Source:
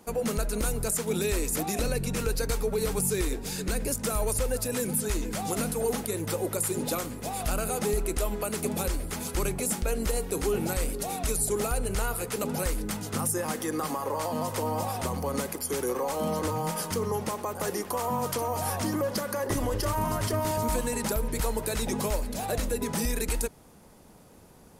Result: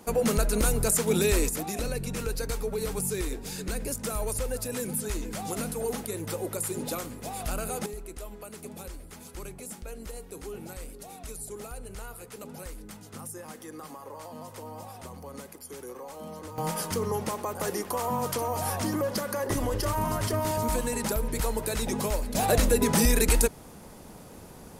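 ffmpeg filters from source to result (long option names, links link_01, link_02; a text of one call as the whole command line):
ffmpeg -i in.wav -af "asetnsamples=nb_out_samples=441:pad=0,asendcmd='1.49 volume volume -3dB;7.86 volume volume -12dB;16.58 volume volume 0dB;22.35 volume volume 7dB',volume=4dB" out.wav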